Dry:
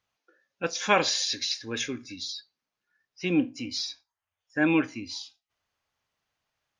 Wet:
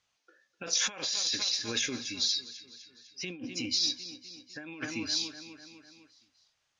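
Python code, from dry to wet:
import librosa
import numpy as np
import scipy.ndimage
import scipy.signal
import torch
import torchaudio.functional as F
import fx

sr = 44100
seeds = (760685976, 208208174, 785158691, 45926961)

p1 = x + fx.echo_feedback(x, sr, ms=251, feedback_pct=58, wet_db=-18.5, dry=0)
p2 = fx.over_compress(p1, sr, threshold_db=-33.0, ratio=-1.0)
p3 = scipy.signal.sosfilt(scipy.signal.butter(4, 8200.0, 'lowpass', fs=sr, output='sos'), p2)
p4 = fx.high_shelf(p3, sr, hz=2700.0, db=10.5)
y = p4 * librosa.db_to_amplitude(-5.5)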